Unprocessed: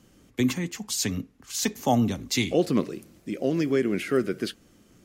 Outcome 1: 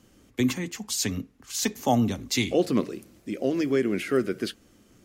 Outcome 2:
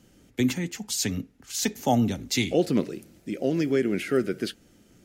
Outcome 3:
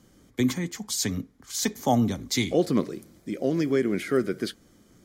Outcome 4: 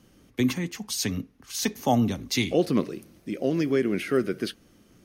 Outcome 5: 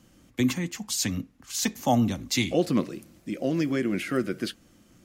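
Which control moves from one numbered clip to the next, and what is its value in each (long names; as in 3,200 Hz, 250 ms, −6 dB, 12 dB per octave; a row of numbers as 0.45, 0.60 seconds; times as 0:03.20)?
notch filter, centre frequency: 160, 1,100, 2,700, 7,400, 420 Hertz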